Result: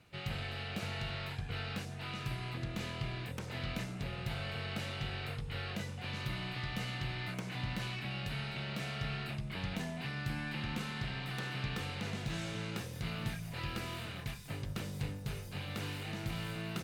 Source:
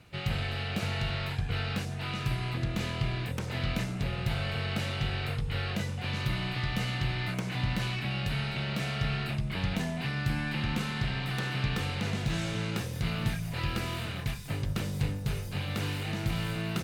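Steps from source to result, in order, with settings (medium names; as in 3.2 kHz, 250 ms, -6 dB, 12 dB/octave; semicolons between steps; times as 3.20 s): bass shelf 130 Hz -4.5 dB; trim -6 dB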